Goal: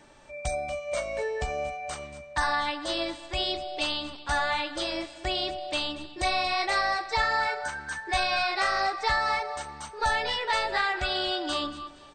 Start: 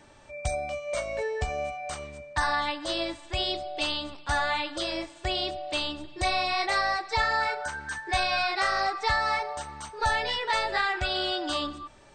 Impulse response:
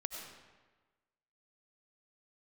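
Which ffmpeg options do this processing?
-af "equalizer=f=92:w=3.6:g=-12,aecho=1:1:232|464|696:0.141|0.0523|0.0193"

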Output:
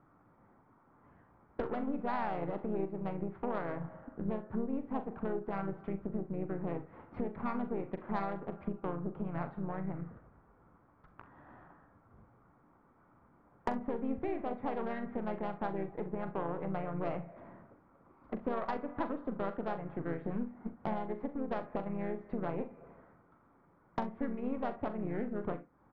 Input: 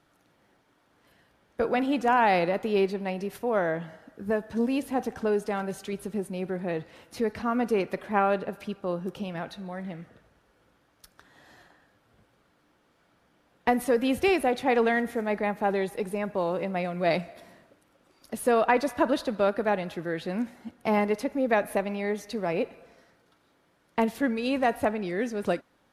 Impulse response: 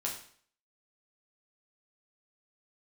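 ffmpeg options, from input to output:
-filter_complex "[0:a]lowpass=f=1.5k:w=0.5412,lowpass=f=1.5k:w=1.3066,aecho=1:1:0.9:0.36,asplit=2[a][b];[b]aecho=0:1:82:0.0944[c];[a][c]amix=inputs=2:normalize=0,acompressor=threshold=-39dB:ratio=5,aeval=exprs='0.0708*(cos(1*acos(clip(val(0)/0.0708,-1,1)))-cos(1*PI/2))+0.00316*(cos(7*acos(clip(val(0)/0.0708,-1,1)))-cos(7*PI/2))+0.00398*(cos(8*acos(clip(val(0)/0.0708,-1,1)))-cos(8*PI/2))':c=same,asplit=2[d][e];[e]aecho=0:1:41|65:0.282|0.133[f];[d][f]amix=inputs=2:normalize=0,asplit=2[g][h];[h]asetrate=37084,aresample=44100,atempo=1.18921,volume=-6dB[i];[g][i]amix=inputs=2:normalize=0,volume=3.5dB"

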